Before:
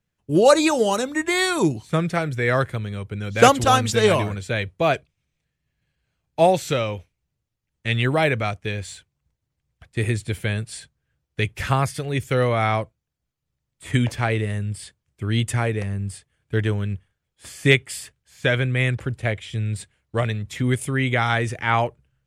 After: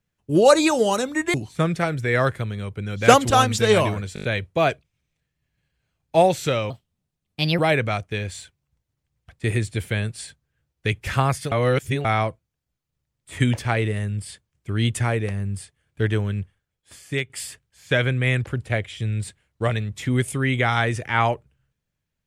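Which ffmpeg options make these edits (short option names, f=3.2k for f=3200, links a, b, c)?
-filter_complex "[0:a]asplit=12[a][b][c][d][e][f][g][h][i][j][k][l];[a]atrim=end=1.342[m];[b]atrim=start=1.678:end=4.502[n];[c]atrim=start=4.478:end=4.502[o];[d]atrim=start=4.478:end=4.502[p];[e]atrim=start=4.478:end=4.502[q];[f]atrim=start=4.478:end=4.502[r];[g]atrim=start=4.478:end=6.944[s];[h]atrim=start=6.94:end=8.12,asetpts=PTS-STARTPTS,asetrate=58653,aresample=44100,atrim=end_sample=39126,asetpts=PTS-STARTPTS[t];[i]atrim=start=8.116:end=12.052[u];[j]atrim=start=12.048:end=12.582,asetpts=PTS-STARTPTS,areverse[v];[k]atrim=start=12.578:end=17.83,asetpts=PTS-STARTPTS,afade=t=out:st=4.372:d=0.88:silence=0.223872[w];[l]atrim=start=17.83,asetpts=PTS-STARTPTS,afade=t=in:d=0.004:c=hsin:silence=0.223872[x];[m][n]acrossfade=d=0.004:c1=hsin:c2=hsin[y];[y][o]acrossfade=d=0.004:c1=hsin:c2=hsin[z];[z][p]acrossfade=d=0.004:c1=hsin:c2=hsin[aa];[aa][q]acrossfade=d=0.004:c1=hsin:c2=hsin[ab];[ab][r]acrossfade=d=0.004:c1=hsin:c2=hsin[ac];[ac][s]acrossfade=d=0.004:c1=hsin:c2=hsin[ad];[ad][t]acrossfade=d=0.004:c1=hsin:c2=hsin[ae];[ae][u]acrossfade=d=0.004:c1=hsin:c2=hsin[af];[af][v]acrossfade=d=0.004:c1=hsin:c2=hsin[ag];[w][x]concat=n=2:v=0:a=1[ah];[ag][ah]acrossfade=d=0.004:c1=hsin:c2=hsin"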